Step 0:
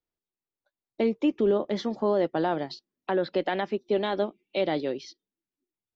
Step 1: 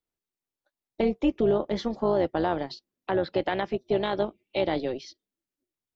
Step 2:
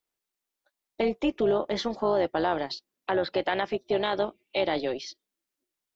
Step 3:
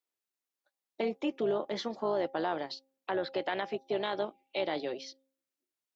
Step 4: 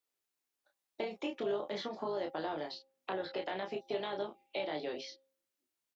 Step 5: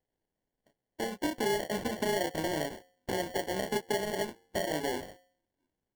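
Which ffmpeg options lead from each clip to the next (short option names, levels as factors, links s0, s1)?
-af "tremolo=f=260:d=0.519,volume=1.33"
-filter_complex "[0:a]lowshelf=f=340:g=-11,asplit=2[s0][s1];[s1]alimiter=level_in=1.06:limit=0.0631:level=0:latency=1:release=33,volume=0.944,volume=0.841[s2];[s0][s2]amix=inputs=2:normalize=0"
-af "highpass=140,bandreject=f=267.5:t=h:w=4,bandreject=f=535:t=h:w=4,bandreject=f=802.5:t=h:w=4,volume=0.501"
-filter_complex "[0:a]acrossover=split=640|3900[s0][s1][s2];[s0]acompressor=threshold=0.00891:ratio=4[s3];[s1]acompressor=threshold=0.00631:ratio=4[s4];[s2]acompressor=threshold=0.00141:ratio=4[s5];[s3][s4][s5]amix=inputs=3:normalize=0,asplit=2[s6][s7];[s7]aecho=0:1:20|32:0.447|0.531[s8];[s6][s8]amix=inputs=2:normalize=0,volume=1.12"
-af "aemphasis=mode=reproduction:type=bsi,alimiter=level_in=1.41:limit=0.0631:level=0:latency=1:release=436,volume=0.708,acrusher=samples=35:mix=1:aa=0.000001,volume=2"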